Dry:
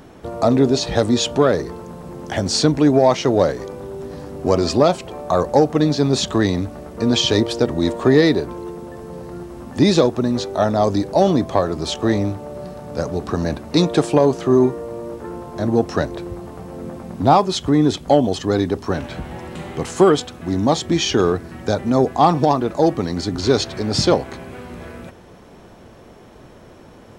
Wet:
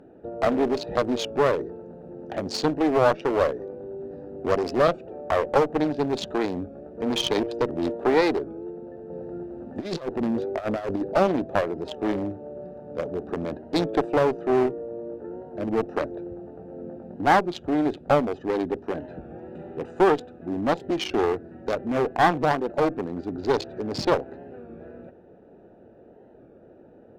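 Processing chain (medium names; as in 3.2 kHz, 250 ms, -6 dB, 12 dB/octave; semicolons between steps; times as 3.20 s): local Wiener filter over 41 samples; tone controls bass -11 dB, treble -10 dB; one-sided clip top -23.5 dBFS; 9.10–11.14 s: compressor with a negative ratio -26 dBFS, ratio -0.5; bass shelf 75 Hz -7.5 dB; warped record 33 1/3 rpm, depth 100 cents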